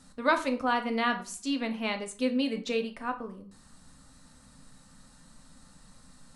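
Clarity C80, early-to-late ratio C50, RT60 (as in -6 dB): 17.5 dB, 13.0 dB, 0.45 s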